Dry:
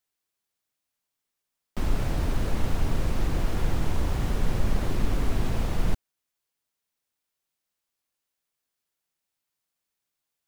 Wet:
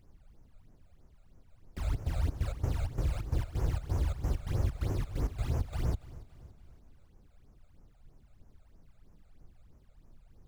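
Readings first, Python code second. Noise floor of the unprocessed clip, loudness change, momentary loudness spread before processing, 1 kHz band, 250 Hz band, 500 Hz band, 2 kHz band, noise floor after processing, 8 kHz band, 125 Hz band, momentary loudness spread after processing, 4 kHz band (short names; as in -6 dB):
-84 dBFS, -5.0 dB, 3 LU, -10.0 dB, -9.5 dB, -8.5 dB, -11.0 dB, -62 dBFS, -9.5 dB, -2.5 dB, 5 LU, -10.5 dB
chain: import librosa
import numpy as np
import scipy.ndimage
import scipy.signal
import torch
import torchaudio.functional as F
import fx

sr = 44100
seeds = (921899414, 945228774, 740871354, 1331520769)

p1 = fx.low_shelf(x, sr, hz=130.0, db=9.5)
p2 = fx.step_gate(p1, sr, bpm=131, pattern='x.xx.x.x', floor_db=-12.0, edge_ms=4.5)
p3 = scipy.signal.sosfilt(scipy.signal.butter(2, 72.0, 'highpass', fs=sr, output='sos'), p2)
p4 = fx.peak_eq(p3, sr, hz=200.0, db=-10.5, octaves=0.62)
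p5 = fx.dmg_noise_colour(p4, sr, seeds[0], colour='brown', level_db=-52.0)
p6 = fx.phaser_stages(p5, sr, stages=12, low_hz=290.0, high_hz=3800.0, hz=3.1, feedback_pct=40)
p7 = p6 + fx.echo_feedback(p6, sr, ms=283, feedback_pct=52, wet_db=-18.5, dry=0)
y = F.gain(torch.from_numpy(p7), -5.5).numpy()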